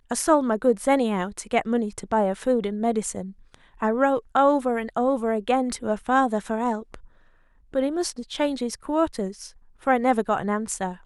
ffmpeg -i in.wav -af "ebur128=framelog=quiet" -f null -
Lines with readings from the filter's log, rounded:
Integrated loudness:
  I:         -24.1 LUFS
  Threshold: -34.6 LUFS
Loudness range:
  LRA:         4.0 LU
  Threshold: -45.0 LUFS
  LRA low:   -27.4 LUFS
  LRA high:  -23.4 LUFS